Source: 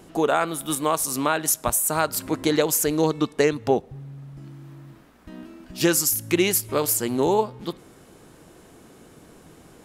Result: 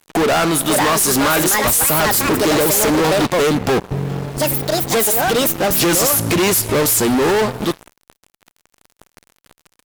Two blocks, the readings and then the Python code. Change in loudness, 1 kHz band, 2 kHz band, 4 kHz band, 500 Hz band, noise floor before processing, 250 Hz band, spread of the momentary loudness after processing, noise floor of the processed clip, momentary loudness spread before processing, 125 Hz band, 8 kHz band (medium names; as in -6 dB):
+7.5 dB, +8.0 dB, +10.5 dB, +11.0 dB, +7.0 dB, -51 dBFS, +7.5 dB, 7 LU, -78 dBFS, 20 LU, +10.0 dB, +8.0 dB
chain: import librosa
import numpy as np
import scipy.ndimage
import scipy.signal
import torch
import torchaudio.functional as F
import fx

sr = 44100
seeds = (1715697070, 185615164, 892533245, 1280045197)

y = fx.echo_pitch(x, sr, ms=569, semitones=5, count=2, db_per_echo=-6.0)
y = fx.fuzz(y, sr, gain_db=35.0, gate_db=-41.0)